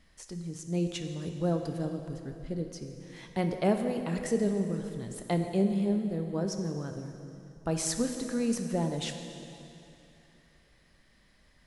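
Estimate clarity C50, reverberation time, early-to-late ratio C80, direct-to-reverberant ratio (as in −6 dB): 6.5 dB, 2.8 s, 7.0 dB, 5.0 dB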